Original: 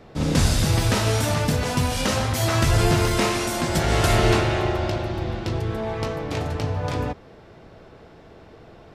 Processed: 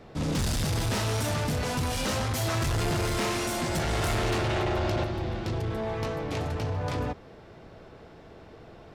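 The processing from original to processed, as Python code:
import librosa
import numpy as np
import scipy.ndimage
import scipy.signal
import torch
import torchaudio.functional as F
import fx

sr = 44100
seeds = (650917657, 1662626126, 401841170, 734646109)

y = 10.0 ** (-22.0 / 20.0) * np.tanh(x / 10.0 ** (-22.0 / 20.0))
y = fx.env_flatten(y, sr, amount_pct=100, at=(4.44, 5.04))
y = F.gain(torch.from_numpy(y), -2.0).numpy()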